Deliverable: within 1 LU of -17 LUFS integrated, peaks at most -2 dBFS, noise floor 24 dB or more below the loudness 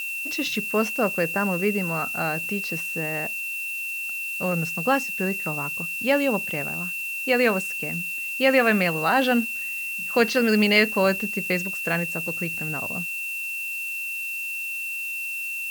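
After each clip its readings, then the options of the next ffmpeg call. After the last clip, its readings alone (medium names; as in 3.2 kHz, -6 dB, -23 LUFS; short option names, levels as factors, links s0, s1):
steady tone 2.7 kHz; tone level -28 dBFS; noise floor -31 dBFS; noise floor target -48 dBFS; loudness -24.0 LUFS; peak level -4.0 dBFS; loudness target -17.0 LUFS
-> -af "bandreject=f=2700:w=30"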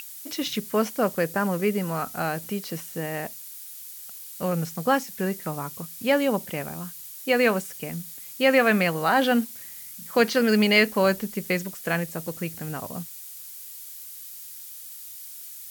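steady tone not found; noise floor -41 dBFS; noise floor target -49 dBFS
-> -af "afftdn=nr=8:nf=-41"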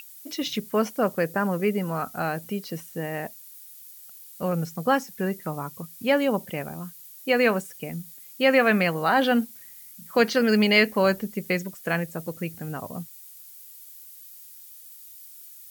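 noise floor -46 dBFS; noise floor target -49 dBFS
-> -af "afftdn=nr=6:nf=-46"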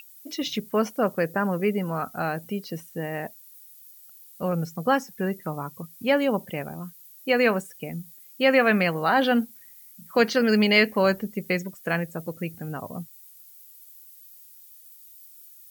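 noise floor -50 dBFS; loudness -25.0 LUFS; peak level -5.0 dBFS; loudness target -17.0 LUFS
-> -af "volume=2.51,alimiter=limit=0.794:level=0:latency=1"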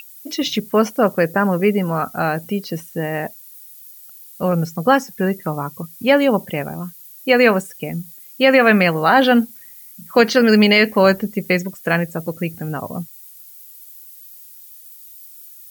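loudness -17.5 LUFS; peak level -2.0 dBFS; noise floor -42 dBFS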